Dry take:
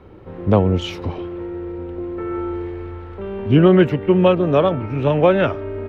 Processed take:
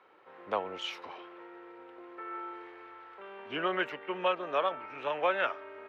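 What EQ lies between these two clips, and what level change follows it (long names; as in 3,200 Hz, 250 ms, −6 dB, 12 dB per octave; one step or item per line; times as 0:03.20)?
high-pass filter 1,200 Hz 12 dB per octave
high-shelf EQ 2,600 Hz −11 dB
−1.5 dB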